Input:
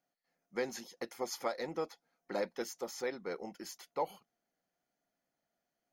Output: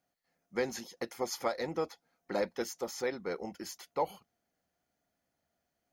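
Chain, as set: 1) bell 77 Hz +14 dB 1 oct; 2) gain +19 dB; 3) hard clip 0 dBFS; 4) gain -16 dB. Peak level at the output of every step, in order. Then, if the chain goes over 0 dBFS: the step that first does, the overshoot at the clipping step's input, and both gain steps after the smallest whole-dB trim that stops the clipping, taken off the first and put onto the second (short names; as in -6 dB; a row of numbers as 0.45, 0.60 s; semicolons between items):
-22.0, -3.0, -3.0, -19.0 dBFS; no overload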